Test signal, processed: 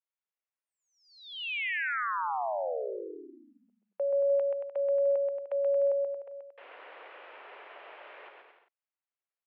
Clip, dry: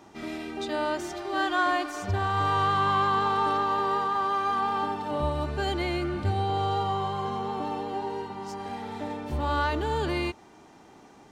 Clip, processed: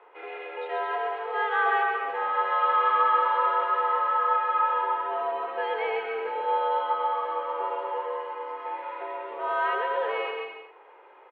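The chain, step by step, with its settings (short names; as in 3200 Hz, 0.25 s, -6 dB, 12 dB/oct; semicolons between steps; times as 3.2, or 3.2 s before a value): bouncing-ball echo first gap 0.13 s, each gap 0.75×, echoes 5; mistuned SSB +97 Hz 350–2700 Hz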